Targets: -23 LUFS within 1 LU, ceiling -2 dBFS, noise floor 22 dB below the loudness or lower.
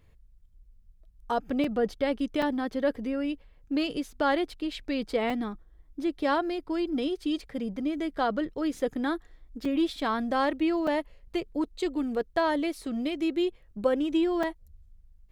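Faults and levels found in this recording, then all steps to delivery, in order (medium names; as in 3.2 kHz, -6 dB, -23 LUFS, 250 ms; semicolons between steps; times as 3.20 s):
dropouts 6; longest dropout 3.8 ms; loudness -29.5 LUFS; peak level -13.0 dBFS; loudness target -23.0 LUFS
-> interpolate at 1.64/2.42/5.30/9.65/10.87/14.43 s, 3.8 ms; trim +6.5 dB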